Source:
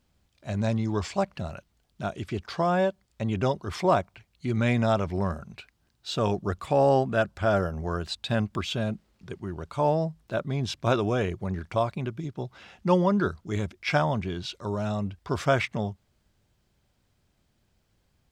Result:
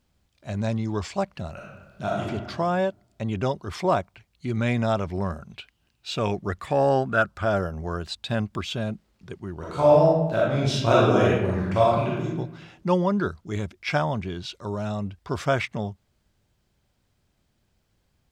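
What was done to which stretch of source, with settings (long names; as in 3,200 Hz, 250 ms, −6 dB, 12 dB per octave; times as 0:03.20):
0:01.52–0:02.26: thrown reverb, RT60 1.3 s, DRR −4 dB
0:05.49–0:07.43: parametric band 3,400 Hz → 1,200 Hz +12.5 dB 0.33 octaves
0:09.57–0:12.25: thrown reverb, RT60 0.99 s, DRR −6 dB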